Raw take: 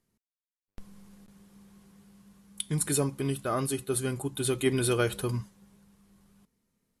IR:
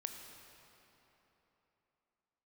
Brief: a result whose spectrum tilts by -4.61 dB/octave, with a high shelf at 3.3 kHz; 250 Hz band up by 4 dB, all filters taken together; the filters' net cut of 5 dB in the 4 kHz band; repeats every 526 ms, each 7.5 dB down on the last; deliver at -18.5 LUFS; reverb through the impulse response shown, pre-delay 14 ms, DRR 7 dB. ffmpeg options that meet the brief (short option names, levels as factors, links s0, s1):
-filter_complex "[0:a]equalizer=f=250:t=o:g=5,highshelf=f=3300:g=3.5,equalizer=f=4000:t=o:g=-9,aecho=1:1:526|1052|1578|2104|2630:0.422|0.177|0.0744|0.0312|0.0131,asplit=2[s0][s1];[1:a]atrim=start_sample=2205,adelay=14[s2];[s1][s2]afir=irnorm=-1:irlink=0,volume=0.562[s3];[s0][s3]amix=inputs=2:normalize=0,volume=2.51"